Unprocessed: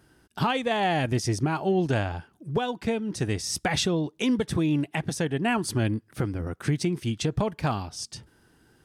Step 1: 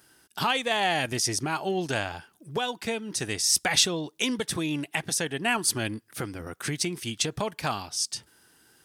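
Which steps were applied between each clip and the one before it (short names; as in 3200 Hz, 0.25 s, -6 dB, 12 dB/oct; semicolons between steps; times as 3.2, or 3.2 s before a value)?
tilt +3 dB/oct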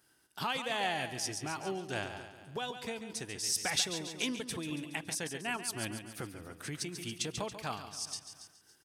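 on a send: feedback echo 0.14 s, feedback 53%, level -9 dB; on the sum: noise-modulated level, depth 55%; gain -7 dB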